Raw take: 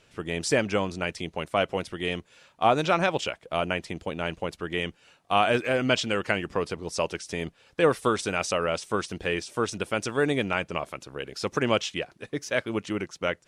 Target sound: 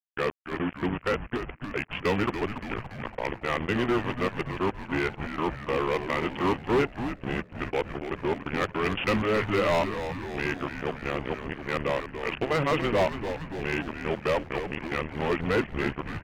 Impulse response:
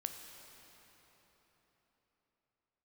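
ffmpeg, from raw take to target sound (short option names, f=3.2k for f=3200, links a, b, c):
-filter_complex "[0:a]areverse,bandreject=f=50:t=h:w=6,bandreject=f=100:t=h:w=6,bandreject=f=150:t=h:w=6,bandreject=f=200:t=h:w=6,bandreject=f=250:t=h:w=6,bandreject=f=300:t=h:w=6,bandreject=f=350:t=h:w=6,bandreject=f=400:t=h:w=6,aresample=8000,acrusher=bits=4:mix=0:aa=0.5,aresample=44100,asetrate=36603,aresample=44100,asoftclip=type=hard:threshold=-19.5dB,asplit=9[a][b][c][d][e][f][g][h][i];[b]adelay=285,afreqshift=-110,volume=-9dB[j];[c]adelay=570,afreqshift=-220,volume=-12.9dB[k];[d]adelay=855,afreqshift=-330,volume=-16.8dB[l];[e]adelay=1140,afreqshift=-440,volume=-20.6dB[m];[f]adelay=1425,afreqshift=-550,volume=-24.5dB[n];[g]adelay=1710,afreqshift=-660,volume=-28.4dB[o];[h]adelay=1995,afreqshift=-770,volume=-32.3dB[p];[i]adelay=2280,afreqshift=-880,volume=-36.1dB[q];[a][j][k][l][m][n][o][p][q]amix=inputs=9:normalize=0"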